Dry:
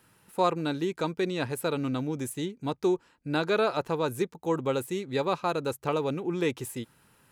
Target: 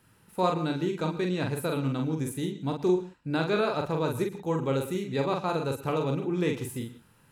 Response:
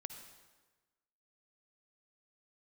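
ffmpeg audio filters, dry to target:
-filter_complex "[0:a]bass=frequency=250:gain=6,treble=frequency=4000:gain=-1,asplit=2[link_01][link_02];[1:a]atrim=start_sample=2205,atrim=end_sample=6174,adelay=44[link_03];[link_02][link_03]afir=irnorm=-1:irlink=0,volume=0.5dB[link_04];[link_01][link_04]amix=inputs=2:normalize=0,volume=-2.5dB"

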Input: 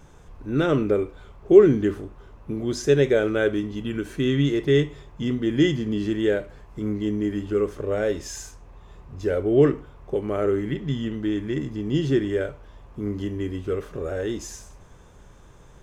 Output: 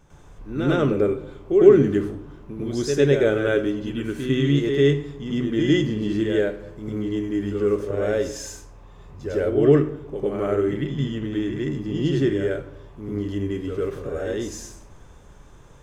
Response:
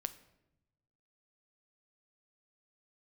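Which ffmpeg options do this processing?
-filter_complex "[0:a]asplit=2[link_01][link_02];[1:a]atrim=start_sample=2205,adelay=102[link_03];[link_02][link_03]afir=irnorm=-1:irlink=0,volume=8dB[link_04];[link_01][link_04]amix=inputs=2:normalize=0,volume=-6.5dB"

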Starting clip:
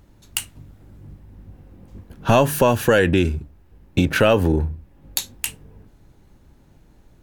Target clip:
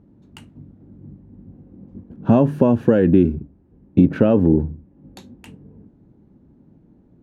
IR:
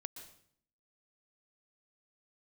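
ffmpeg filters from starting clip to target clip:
-af "bandpass=frequency=230:width_type=q:width=1.5:csg=0,volume=8dB"

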